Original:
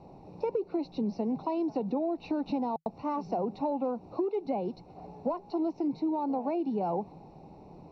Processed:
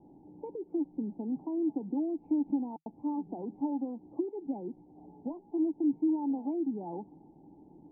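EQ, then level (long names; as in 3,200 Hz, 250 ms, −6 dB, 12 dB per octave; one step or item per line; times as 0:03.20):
formant resonators in series u
+3.5 dB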